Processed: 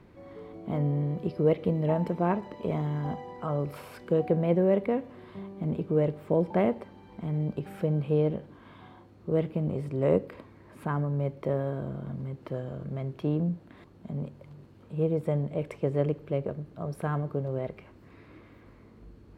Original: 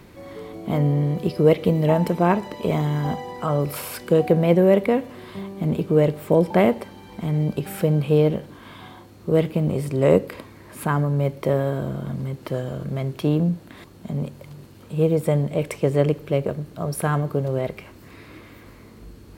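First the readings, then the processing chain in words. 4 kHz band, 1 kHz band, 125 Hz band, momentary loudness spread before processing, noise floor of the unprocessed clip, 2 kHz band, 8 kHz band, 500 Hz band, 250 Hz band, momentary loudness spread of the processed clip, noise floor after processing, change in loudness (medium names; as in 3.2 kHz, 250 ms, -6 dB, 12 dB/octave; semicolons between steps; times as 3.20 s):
under -10 dB, -8.5 dB, -7.5 dB, 15 LU, -46 dBFS, -11.0 dB, under -20 dB, -8.0 dB, -7.5 dB, 13 LU, -54 dBFS, -8.0 dB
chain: low-pass 1.6 kHz 6 dB/octave; trim -7.5 dB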